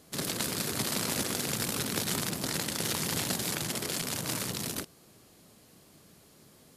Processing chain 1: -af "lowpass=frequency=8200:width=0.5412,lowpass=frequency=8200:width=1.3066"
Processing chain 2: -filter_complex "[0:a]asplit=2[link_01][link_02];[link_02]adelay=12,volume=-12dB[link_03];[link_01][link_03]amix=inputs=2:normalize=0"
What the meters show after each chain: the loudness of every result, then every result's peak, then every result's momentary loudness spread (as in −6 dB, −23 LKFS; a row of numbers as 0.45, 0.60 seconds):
−32.5, −31.0 LKFS; −15.5, −15.5 dBFS; 3, 3 LU